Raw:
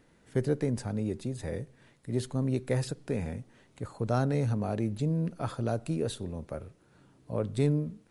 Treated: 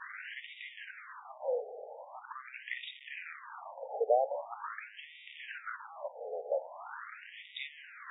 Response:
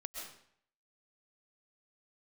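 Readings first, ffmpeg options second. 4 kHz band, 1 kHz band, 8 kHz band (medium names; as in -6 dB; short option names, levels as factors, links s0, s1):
-0.5 dB, +2.0 dB, under -30 dB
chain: -af "aeval=exprs='val(0)+0.5*0.0178*sgn(val(0))':c=same,afftfilt=real='re*between(b*sr/1024,580*pow(2700/580,0.5+0.5*sin(2*PI*0.43*pts/sr))/1.41,580*pow(2700/580,0.5+0.5*sin(2*PI*0.43*pts/sr))*1.41)':imag='im*between(b*sr/1024,580*pow(2700/580,0.5+0.5*sin(2*PI*0.43*pts/sr))/1.41,580*pow(2700/580,0.5+0.5*sin(2*PI*0.43*pts/sr))*1.41)':win_size=1024:overlap=0.75,volume=1.68"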